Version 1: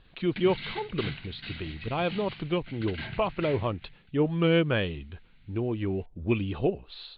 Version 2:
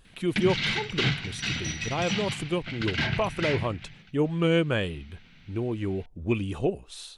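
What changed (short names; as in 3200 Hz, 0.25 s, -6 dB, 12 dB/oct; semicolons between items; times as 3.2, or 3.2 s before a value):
background +10.5 dB; master: remove steep low-pass 4500 Hz 96 dB/oct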